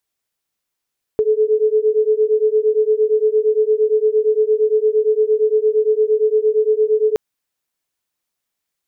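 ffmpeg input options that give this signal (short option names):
-f lavfi -i "aevalsrc='0.168*(sin(2*PI*427*t)+sin(2*PI*435.7*t))':d=5.97:s=44100"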